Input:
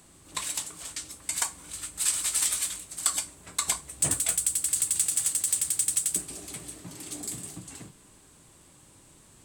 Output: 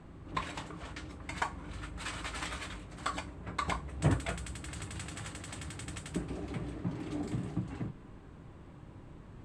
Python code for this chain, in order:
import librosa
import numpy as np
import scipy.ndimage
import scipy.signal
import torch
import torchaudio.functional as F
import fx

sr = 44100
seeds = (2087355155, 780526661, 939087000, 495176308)

y = scipy.signal.sosfilt(scipy.signal.butter(2, 1800.0, 'lowpass', fs=sr, output='sos'), x)
y = fx.low_shelf(y, sr, hz=230.0, db=8.0)
y = y * librosa.db_to_amplitude(3.5)